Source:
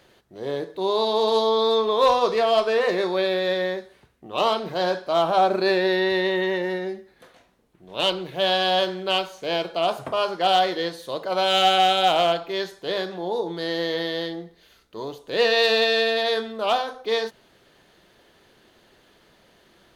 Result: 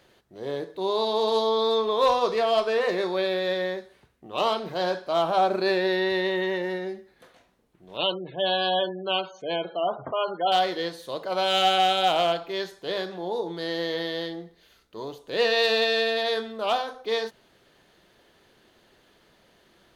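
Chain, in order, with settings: 7.97–10.52 spectral gate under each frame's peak -20 dB strong; gain -3 dB

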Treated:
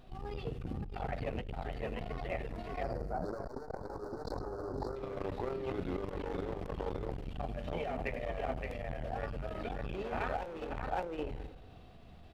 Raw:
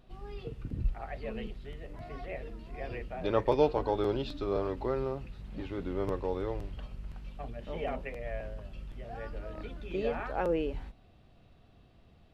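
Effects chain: echo 0.569 s -3.5 dB; overloaded stage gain 29.5 dB; 2.83–4.96 elliptic band-stop 1500–4500 Hz, stop band 40 dB; early reflections 12 ms -17 dB, 75 ms -16.5 dB; spring tank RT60 1.2 s, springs 40/56 ms, chirp 50 ms, DRR 14 dB; negative-ratio compressor -36 dBFS, ratio -0.5; bell 750 Hz +4 dB 0.26 oct; de-hum 53.15 Hz, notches 11; core saturation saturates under 270 Hz; gain +2.5 dB

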